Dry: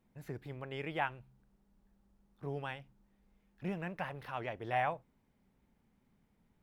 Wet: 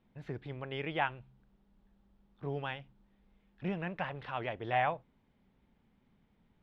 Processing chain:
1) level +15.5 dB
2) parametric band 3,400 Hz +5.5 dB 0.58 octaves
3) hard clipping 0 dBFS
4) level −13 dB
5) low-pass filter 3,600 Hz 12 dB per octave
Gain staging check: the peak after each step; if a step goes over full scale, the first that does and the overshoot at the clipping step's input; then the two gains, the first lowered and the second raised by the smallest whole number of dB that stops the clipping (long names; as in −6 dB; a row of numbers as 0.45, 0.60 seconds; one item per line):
−3.0, −2.5, −2.5, −15.5, −16.0 dBFS
no step passes full scale